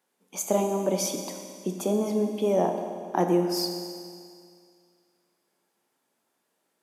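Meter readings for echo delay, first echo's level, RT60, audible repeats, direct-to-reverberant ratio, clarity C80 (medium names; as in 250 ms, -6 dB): no echo, no echo, 2.2 s, no echo, 4.0 dB, 6.5 dB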